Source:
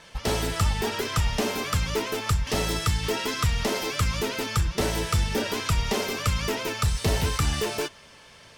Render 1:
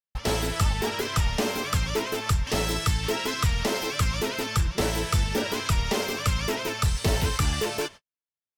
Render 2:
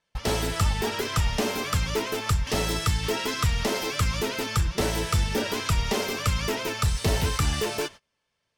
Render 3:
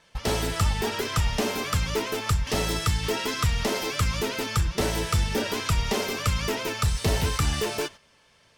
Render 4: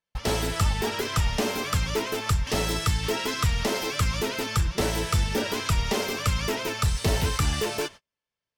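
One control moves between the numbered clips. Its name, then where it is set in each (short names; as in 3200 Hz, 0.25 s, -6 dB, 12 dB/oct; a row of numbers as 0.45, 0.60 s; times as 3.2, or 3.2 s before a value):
gate, range: -55, -28, -10, -40 dB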